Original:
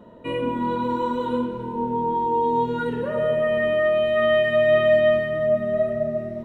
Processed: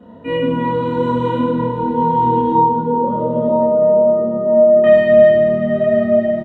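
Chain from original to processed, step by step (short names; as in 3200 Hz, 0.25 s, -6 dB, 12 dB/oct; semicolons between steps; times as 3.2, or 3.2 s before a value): 2.52–4.84 elliptic band-pass 200–1000 Hz, stop band 40 dB; doubler 31 ms -6 dB; feedback echo 0.971 s, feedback 17%, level -11 dB; reverb RT60 3.5 s, pre-delay 3 ms, DRR -6 dB; gain -10 dB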